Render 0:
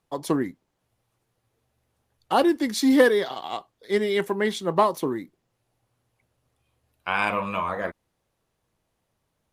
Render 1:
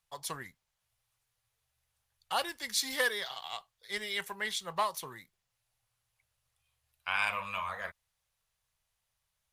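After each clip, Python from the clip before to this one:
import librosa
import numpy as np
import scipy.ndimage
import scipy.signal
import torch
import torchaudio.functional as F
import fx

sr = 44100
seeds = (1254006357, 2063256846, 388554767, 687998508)

y = fx.tone_stack(x, sr, knobs='10-0-10')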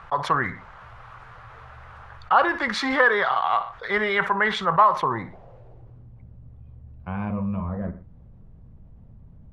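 y = fx.filter_sweep_lowpass(x, sr, from_hz=1300.0, to_hz=240.0, start_s=4.91, end_s=6.11, q=2.6)
y = fx.echo_feedback(y, sr, ms=61, feedback_pct=24, wet_db=-20.0)
y = fx.env_flatten(y, sr, amount_pct=50)
y = y * librosa.db_to_amplitude(8.0)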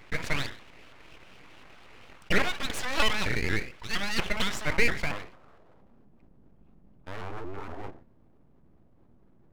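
y = fx.low_shelf(x, sr, hz=120.0, db=-11.5)
y = np.abs(y)
y = fx.vibrato_shape(y, sr, shape='saw_up', rate_hz=4.3, depth_cents=250.0)
y = y * librosa.db_to_amplitude(-3.5)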